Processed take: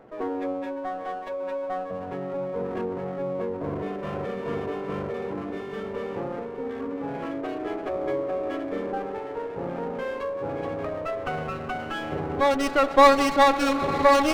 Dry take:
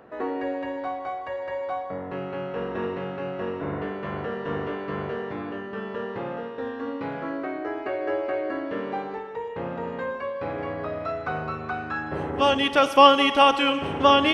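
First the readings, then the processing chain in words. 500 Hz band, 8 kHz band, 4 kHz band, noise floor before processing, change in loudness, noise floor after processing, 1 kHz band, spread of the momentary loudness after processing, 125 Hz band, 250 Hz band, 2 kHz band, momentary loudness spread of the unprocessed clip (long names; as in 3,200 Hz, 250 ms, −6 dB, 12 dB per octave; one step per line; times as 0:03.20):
+0.5 dB, can't be measured, −8.5 dB, −35 dBFS, −1.0 dB, −35 dBFS, −1.5 dB, 13 LU, −0.5 dB, 0.0 dB, −2.0 dB, 14 LU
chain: gate on every frequency bin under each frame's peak −15 dB strong
feedback delay with all-pass diffusion 920 ms, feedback 69%, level −11 dB
windowed peak hold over 9 samples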